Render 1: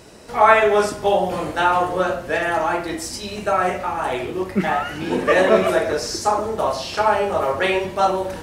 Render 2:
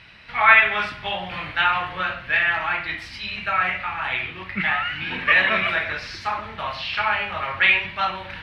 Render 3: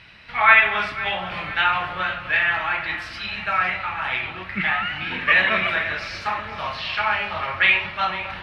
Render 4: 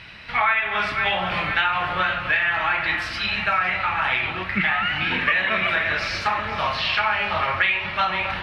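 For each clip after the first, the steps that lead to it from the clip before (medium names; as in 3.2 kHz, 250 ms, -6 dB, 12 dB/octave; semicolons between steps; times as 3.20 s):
FFT filter 140 Hz 0 dB, 420 Hz -17 dB, 2.3 kHz +14 dB, 4.1 kHz +4 dB, 7.2 kHz -23 dB, 12 kHz -20 dB; trim -4 dB
echo whose repeats swap between lows and highs 251 ms, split 1.3 kHz, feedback 73%, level -12 dB
compression 8:1, threshold -23 dBFS, peak gain reduction 15 dB; trim +5.5 dB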